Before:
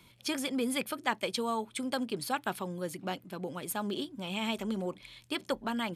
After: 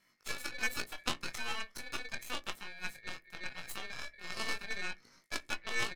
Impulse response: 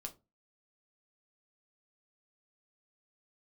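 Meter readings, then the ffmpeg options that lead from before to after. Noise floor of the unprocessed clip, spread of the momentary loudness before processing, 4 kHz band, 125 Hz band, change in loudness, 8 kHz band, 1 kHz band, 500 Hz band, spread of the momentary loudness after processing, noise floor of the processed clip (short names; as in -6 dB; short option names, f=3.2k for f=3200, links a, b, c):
-60 dBFS, 7 LU, -2.5 dB, -10.5 dB, -5.0 dB, -3.0 dB, -8.5 dB, -13.5 dB, 8 LU, -70 dBFS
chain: -filter_complex "[0:a]asplit=2[a][b];[b]alimiter=limit=-23.5dB:level=0:latency=1:release=231,volume=-1.5dB[c];[a][c]amix=inputs=2:normalize=0,flanger=delay=20:depth=3.4:speed=0.38,asplit=2[d][e];[e]adelay=17,volume=-8dB[f];[d][f]amix=inputs=2:normalize=0,aeval=exprs='val(0)*sin(2*PI*2000*n/s)':c=same,aeval=exprs='0.168*(cos(1*acos(clip(val(0)/0.168,-1,1)))-cos(1*PI/2))+0.0473*(cos(3*acos(clip(val(0)/0.168,-1,1)))-cos(3*PI/2))+0.00531*(cos(8*acos(clip(val(0)/0.168,-1,1)))-cos(8*PI/2))':c=same,asplit=2[g][h];[1:a]atrim=start_sample=2205,lowshelf=f=420:g=8[i];[h][i]afir=irnorm=-1:irlink=0,volume=-9dB[j];[g][j]amix=inputs=2:normalize=0,volume=2.5dB"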